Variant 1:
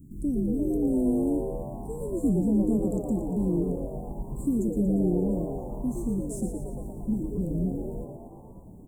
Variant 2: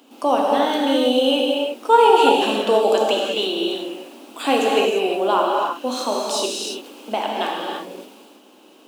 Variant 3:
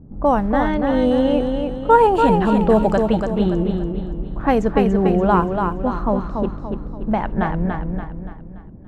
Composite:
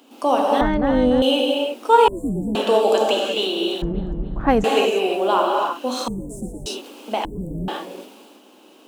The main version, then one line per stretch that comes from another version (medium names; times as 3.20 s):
2
0.61–1.22 s: from 3
2.08–2.55 s: from 1
3.82–4.64 s: from 3
6.08–6.66 s: from 1
7.25–7.68 s: from 1